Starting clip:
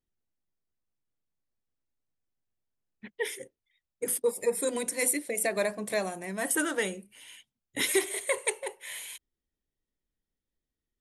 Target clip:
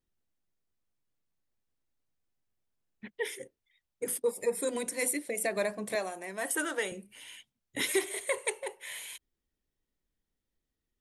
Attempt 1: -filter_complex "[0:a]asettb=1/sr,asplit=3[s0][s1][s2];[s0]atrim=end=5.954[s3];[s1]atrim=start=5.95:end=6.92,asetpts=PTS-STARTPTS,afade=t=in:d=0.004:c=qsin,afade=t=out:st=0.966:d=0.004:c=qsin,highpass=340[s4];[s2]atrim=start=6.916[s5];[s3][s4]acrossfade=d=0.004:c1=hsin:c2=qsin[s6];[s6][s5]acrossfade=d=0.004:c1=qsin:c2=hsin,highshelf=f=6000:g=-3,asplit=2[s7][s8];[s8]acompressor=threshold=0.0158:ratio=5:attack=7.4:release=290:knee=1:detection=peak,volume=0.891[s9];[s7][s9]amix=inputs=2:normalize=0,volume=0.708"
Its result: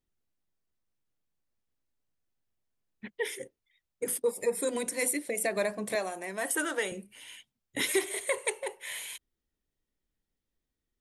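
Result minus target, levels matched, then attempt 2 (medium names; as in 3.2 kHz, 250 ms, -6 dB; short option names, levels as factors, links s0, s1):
compression: peak gain reduction -9 dB
-filter_complex "[0:a]asettb=1/sr,asplit=3[s0][s1][s2];[s0]atrim=end=5.954[s3];[s1]atrim=start=5.95:end=6.92,asetpts=PTS-STARTPTS,afade=t=in:d=0.004:c=qsin,afade=t=out:st=0.966:d=0.004:c=qsin,highpass=340[s4];[s2]atrim=start=6.916[s5];[s3][s4]acrossfade=d=0.004:c1=hsin:c2=qsin[s6];[s6][s5]acrossfade=d=0.004:c1=qsin:c2=hsin,highshelf=f=6000:g=-3,asplit=2[s7][s8];[s8]acompressor=threshold=0.00447:ratio=5:attack=7.4:release=290:knee=1:detection=peak,volume=0.891[s9];[s7][s9]amix=inputs=2:normalize=0,volume=0.708"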